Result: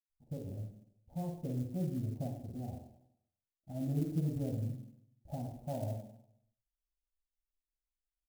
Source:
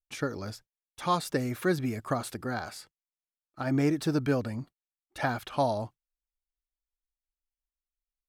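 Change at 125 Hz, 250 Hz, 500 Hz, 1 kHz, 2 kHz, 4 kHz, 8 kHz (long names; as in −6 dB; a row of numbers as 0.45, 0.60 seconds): −2.5 dB, −8.0 dB, −13.0 dB, −19.0 dB, below −30 dB, below −20 dB, −16.0 dB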